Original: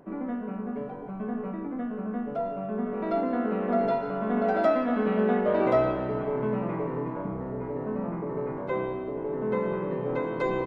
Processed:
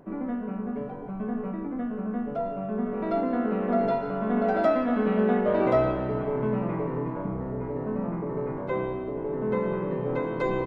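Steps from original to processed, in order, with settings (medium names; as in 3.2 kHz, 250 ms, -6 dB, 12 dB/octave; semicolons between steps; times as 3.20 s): bass shelf 130 Hz +7 dB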